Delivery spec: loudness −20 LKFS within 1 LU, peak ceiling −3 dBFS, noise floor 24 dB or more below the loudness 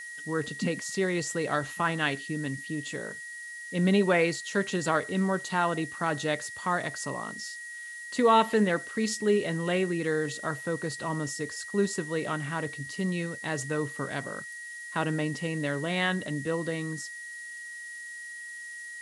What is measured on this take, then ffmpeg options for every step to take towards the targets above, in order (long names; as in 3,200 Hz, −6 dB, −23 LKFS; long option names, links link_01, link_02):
interfering tone 1,900 Hz; level of the tone −39 dBFS; background noise floor −42 dBFS; target noise floor −54 dBFS; integrated loudness −30.0 LKFS; sample peak −10.5 dBFS; target loudness −20.0 LKFS
→ -af "bandreject=frequency=1900:width=30"
-af "afftdn=noise_reduction=12:noise_floor=-42"
-af "volume=10dB,alimiter=limit=-3dB:level=0:latency=1"